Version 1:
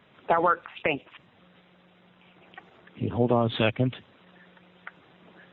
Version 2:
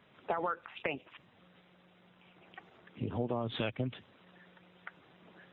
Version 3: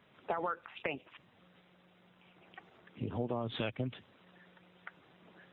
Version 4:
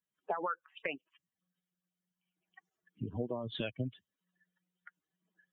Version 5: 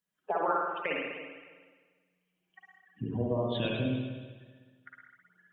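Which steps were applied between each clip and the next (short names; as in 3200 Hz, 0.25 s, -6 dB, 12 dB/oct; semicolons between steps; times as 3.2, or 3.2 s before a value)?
compressor 3:1, threshold -27 dBFS, peak gain reduction 8 dB; gain -5 dB
short-mantissa float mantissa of 8-bit; gain -1.5 dB
per-bin expansion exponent 2; gain +2.5 dB
reverb RT60 1.5 s, pre-delay 50 ms, DRR -3 dB; gain +2.5 dB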